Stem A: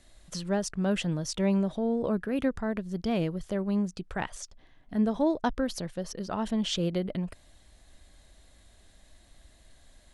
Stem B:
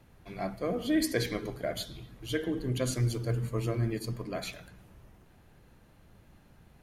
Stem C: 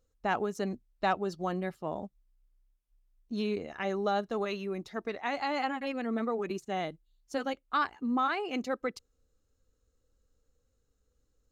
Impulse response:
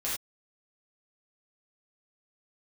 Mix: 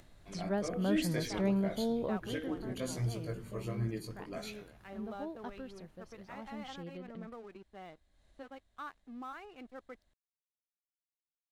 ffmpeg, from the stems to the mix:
-filter_complex "[0:a]lowpass=f=3500:p=1,volume=0.562,afade=t=out:st=2:d=0.47:silence=0.251189[s0];[1:a]flanger=delay=18:depth=2.5:speed=1.3,volume=0.631[s1];[2:a]lowpass=3000,aeval=exprs='sgn(val(0))*max(abs(val(0))-0.00473,0)':c=same,adelay=1050,volume=0.178[s2];[s0][s1][s2]amix=inputs=3:normalize=0,acompressor=mode=upward:threshold=0.00178:ratio=2.5"

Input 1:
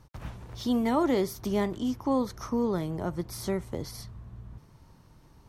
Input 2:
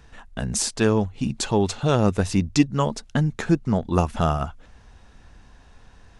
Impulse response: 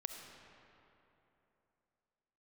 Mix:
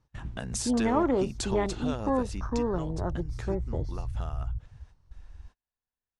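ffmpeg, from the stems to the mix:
-filter_complex "[0:a]lowpass=f=8300:w=0.5412,lowpass=f=8300:w=1.3066,afwtdn=0.0141,asubboost=boost=10:cutoff=68,volume=1.12,asplit=2[s0][s1];[1:a]lowshelf=f=230:g=-7.5,acompressor=threshold=0.0282:ratio=3,volume=0.794,afade=t=out:st=1.73:d=0.79:silence=0.398107[s2];[s1]apad=whole_len=273223[s3];[s2][s3]sidechaingate=range=0.0224:threshold=0.00355:ratio=16:detection=peak[s4];[s0][s4]amix=inputs=2:normalize=0"

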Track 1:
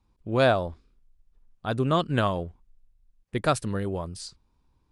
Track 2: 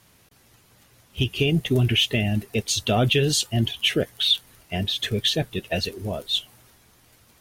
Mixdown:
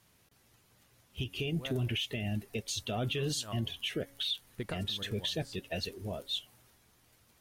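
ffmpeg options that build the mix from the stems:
-filter_complex "[0:a]acompressor=threshold=0.0398:ratio=6,adelay=1250,volume=0.501[s0];[1:a]volume=0.335,asplit=2[s1][s2];[s2]apad=whole_len=272008[s3];[s0][s3]sidechaincompress=threshold=0.00794:ratio=8:attack=9.7:release=136[s4];[s4][s1]amix=inputs=2:normalize=0,bandreject=f=277.4:t=h:w=4,bandreject=f=554.8:t=h:w=4,bandreject=f=832.2:t=h:w=4,bandreject=f=1109.6:t=h:w=4,bandreject=f=1387:t=h:w=4,bandreject=f=1664.4:t=h:w=4,bandreject=f=1941.8:t=h:w=4,bandreject=f=2219.2:t=h:w=4,alimiter=level_in=1.12:limit=0.0631:level=0:latency=1:release=101,volume=0.891"

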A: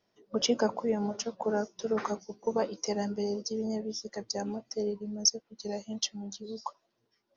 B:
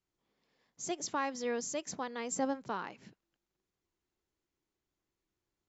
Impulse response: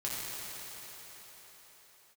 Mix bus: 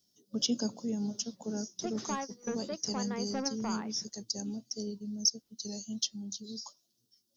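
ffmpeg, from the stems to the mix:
-filter_complex "[0:a]equalizer=f=125:t=o:w=1:g=7,equalizer=f=250:t=o:w=1:g=8,equalizer=f=500:t=o:w=1:g=-5,equalizer=f=1000:t=o:w=1:g=-8,equalizer=f=2000:t=o:w=1:g=-4,equalizer=f=4000:t=o:w=1:g=-4,aexciter=amount=7.6:drive=7.5:freq=3300,volume=0.376,asplit=2[s0][s1];[1:a]lowpass=1900,asoftclip=type=tanh:threshold=0.0266,adelay=950,volume=1.19[s2];[s1]apad=whole_len=292664[s3];[s2][s3]sidechaingate=range=0.0562:threshold=0.00708:ratio=16:detection=peak[s4];[s0][s4]amix=inputs=2:normalize=0,acrossover=split=4100[s5][s6];[s6]acompressor=threshold=0.0158:ratio=4:attack=1:release=60[s7];[s5][s7]amix=inputs=2:normalize=0"

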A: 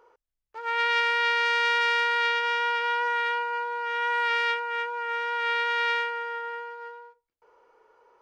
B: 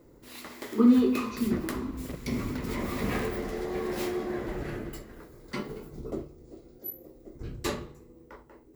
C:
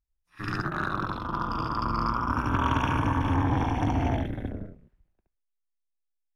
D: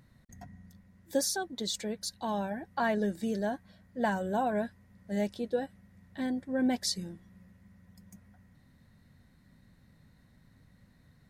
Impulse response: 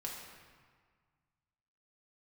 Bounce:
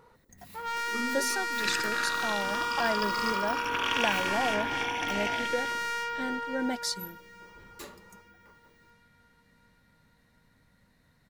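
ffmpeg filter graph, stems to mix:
-filter_complex "[0:a]asoftclip=type=tanh:threshold=0.0447,volume=1.06,asplit=2[s0][s1];[s1]volume=0.133[s2];[1:a]highshelf=f=10000:g=11.5,adelay=150,volume=0.237[s3];[2:a]highpass=f=320:p=1,highshelf=f=1700:t=q:w=1.5:g=11.5,adelay=1200,volume=0.596[s4];[3:a]deesser=0.55,volume=1.12[s5];[s2]aecho=0:1:740|1480|2220|2960|3700|4440|5180|5920:1|0.54|0.292|0.157|0.085|0.0459|0.0248|0.0134[s6];[s0][s3][s4][s5][s6]amix=inputs=5:normalize=0,equalizer=f=100:w=0.41:g=-8.5"

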